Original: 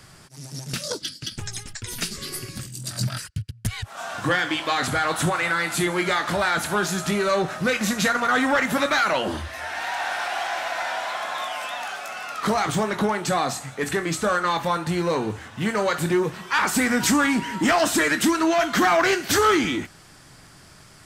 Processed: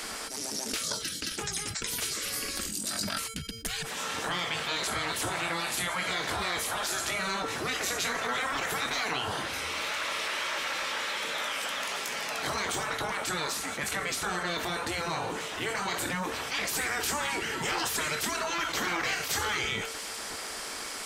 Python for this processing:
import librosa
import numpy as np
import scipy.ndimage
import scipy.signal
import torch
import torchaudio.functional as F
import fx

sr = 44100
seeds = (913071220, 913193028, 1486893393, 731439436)

y = fx.spec_gate(x, sr, threshold_db=-10, keep='weak')
y = fx.comb_fb(y, sr, f0_hz=450.0, decay_s=0.35, harmonics='odd', damping=0.0, mix_pct=70)
y = fx.env_flatten(y, sr, amount_pct=70)
y = F.gain(torch.from_numpy(y), 2.5).numpy()